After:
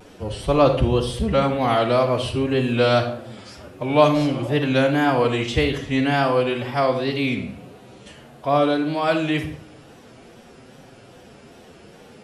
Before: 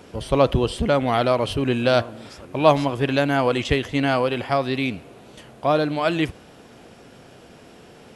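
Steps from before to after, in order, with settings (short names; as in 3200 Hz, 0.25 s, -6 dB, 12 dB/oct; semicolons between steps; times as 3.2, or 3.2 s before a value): time stretch by phase-locked vocoder 1.5×; spectral repair 4.07–4.52, 470–1100 Hz after; wow and flutter 100 cents; on a send: reverb RT60 0.60 s, pre-delay 35 ms, DRR 7 dB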